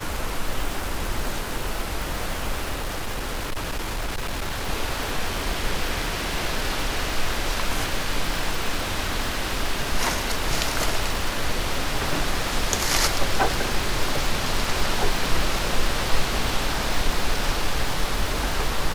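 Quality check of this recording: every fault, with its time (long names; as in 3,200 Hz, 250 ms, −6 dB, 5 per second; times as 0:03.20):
surface crackle 280 per second −27 dBFS
0:02.75–0:04.69: clipping −23.5 dBFS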